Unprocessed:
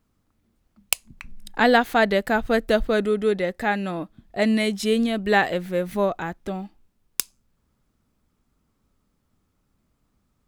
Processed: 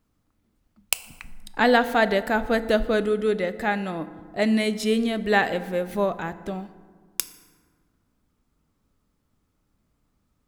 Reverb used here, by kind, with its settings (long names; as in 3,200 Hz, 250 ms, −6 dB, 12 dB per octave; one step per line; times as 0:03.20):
feedback delay network reverb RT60 1.7 s, low-frequency decay 1.45×, high-frequency decay 0.5×, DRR 12 dB
level −1.5 dB